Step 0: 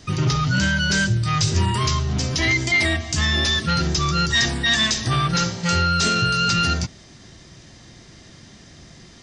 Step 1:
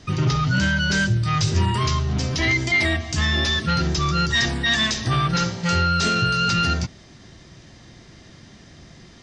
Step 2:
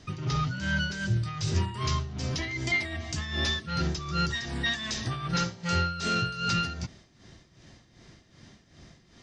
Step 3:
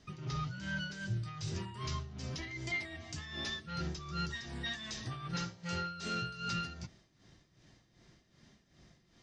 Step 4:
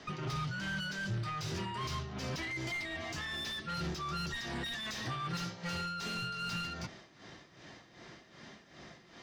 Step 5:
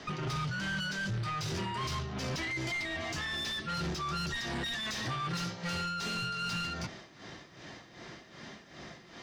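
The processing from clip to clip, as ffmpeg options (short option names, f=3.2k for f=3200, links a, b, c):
-af "highshelf=f=7.4k:g=-11.5"
-af "tremolo=f=2.6:d=0.72,volume=-5.5dB"
-af "flanger=delay=4.7:depth=2.3:regen=-67:speed=0.47:shape=triangular,volume=-5.5dB"
-filter_complex "[0:a]acrossover=split=270|2700[a][b][c];[b]acompressor=threshold=-50dB:ratio=6[d];[a][d][c]amix=inputs=3:normalize=0,asplit=2[e][f];[f]highpass=f=720:p=1,volume=25dB,asoftclip=type=tanh:threshold=-27dB[g];[e][g]amix=inputs=2:normalize=0,lowpass=f=1.7k:p=1,volume=-6dB"
-af "asoftclip=type=tanh:threshold=-34.5dB,volume=5dB"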